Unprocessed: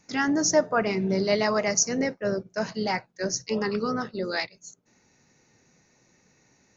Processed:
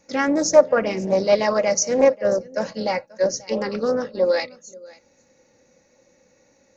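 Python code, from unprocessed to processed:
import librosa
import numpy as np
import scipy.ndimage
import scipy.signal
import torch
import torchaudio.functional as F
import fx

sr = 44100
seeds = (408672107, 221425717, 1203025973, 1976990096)

y = fx.peak_eq(x, sr, hz=530.0, db=15.0, octaves=0.37)
y = y + 0.44 * np.pad(y, (int(3.6 * sr / 1000.0), 0))[:len(y)]
y = y + 10.0 ** (-22.5 / 20.0) * np.pad(y, (int(536 * sr / 1000.0), 0))[:len(y)]
y = fx.doppler_dist(y, sr, depth_ms=0.18)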